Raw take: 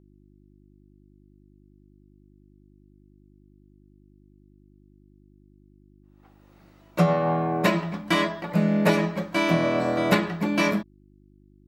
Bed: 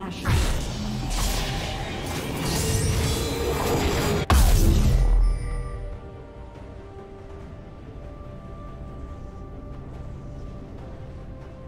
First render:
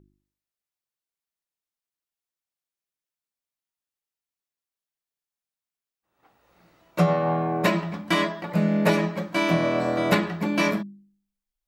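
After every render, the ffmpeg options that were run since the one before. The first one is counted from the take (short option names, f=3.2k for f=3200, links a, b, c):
-af "bandreject=f=50:t=h:w=4,bandreject=f=100:t=h:w=4,bandreject=f=150:t=h:w=4,bandreject=f=200:t=h:w=4,bandreject=f=250:t=h:w=4,bandreject=f=300:t=h:w=4,bandreject=f=350:t=h:w=4"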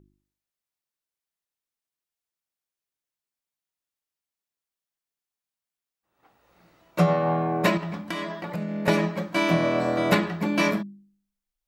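-filter_complex "[0:a]asettb=1/sr,asplit=3[a][b][c];[a]atrim=end=7.774[d];[b]atrim=start=7.77:end=8.88,asetpts=PTS-STARTPTS,afade=t=in:d=0.004:c=qsin,afade=t=out:st=1.106:d=0.004:c=qsin,acompressor=threshold=-27dB:ratio=6:attack=3.2:release=140:knee=1:detection=peak[e];[c]atrim=start=8.876[f];[d][e]acrossfade=d=0.004:c1=hsin:c2=qsin[g];[g][f]acrossfade=d=0.004:c1=qsin:c2=hsin"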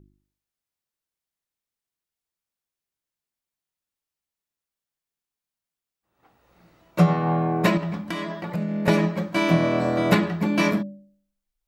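-af "lowshelf=f=270:g=6,bandreject=f=288.5:t=h:w=4,bandreject=f=577:t=h:w=4"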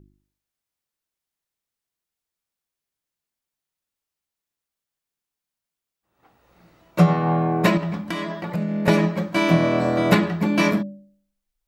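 -af "volume=2dB"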